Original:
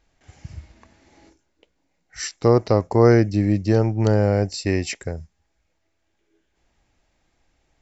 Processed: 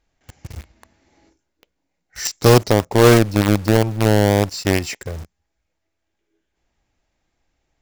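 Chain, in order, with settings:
0:02.25–0:02.70: bass and treble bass +4 dB, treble +12 dB
in parallel at −3 dB: log-companded quantiser 2 bits
on the sum: level −4.5 dB

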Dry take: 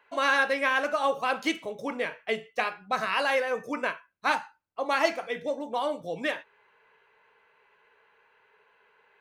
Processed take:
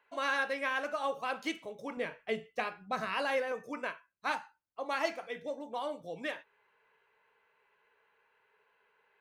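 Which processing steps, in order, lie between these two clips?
0:01.97–0:03.52: low-shelf EQ 360 Hz +9 dB
level −8 dB

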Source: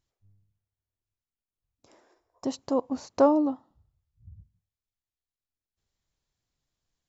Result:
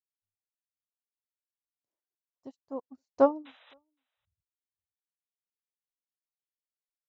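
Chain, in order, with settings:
reverb reduction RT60 1.2 s
sound drawn into the spectrogram noise, 0:03.45–0:03.74, 470–4,000 Hz −33 dBFS
on a send: single-tap delay 517 ms −17 dB
on the sum: expander for the loud parts 2.5 to 1, over −41 dBFS

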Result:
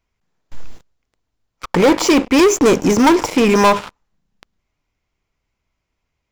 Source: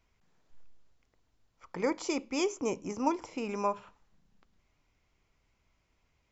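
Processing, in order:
0:01.93–0:02.52: high-shelf EQ 6,100 Hz −10.5 dB
leveller curve on the samples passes 5
level +8.5 dB

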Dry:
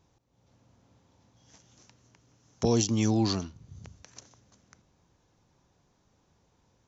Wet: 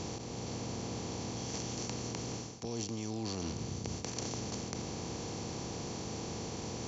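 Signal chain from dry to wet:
compressor on every frequency bin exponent 0.4
reversed playback
downward compressor 20 to 1, threshold −34 dBFS, peak gain reduction 17.5 dB
reversed playback
every ending faded ahead of time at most 120 dB per second

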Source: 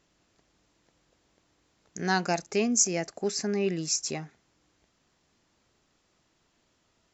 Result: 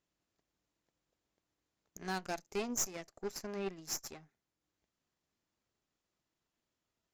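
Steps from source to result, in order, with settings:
harmonic generator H 3 −27 dB, 4 −14 dB, 7 −21 dB, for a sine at −11 dBFS
transient designer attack +3 dB, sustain −3 dB
soft clipping −23.5 dBFS, distortion −6 dB
level −5 dB

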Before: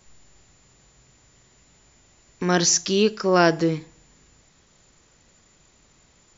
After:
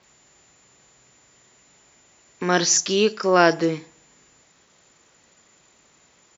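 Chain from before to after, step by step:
high-pass filter 340 Hz 6 dB per octave
multiband delay without the direct sound lows, highs 30 ms, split 5,100 Hz
level +3 dB

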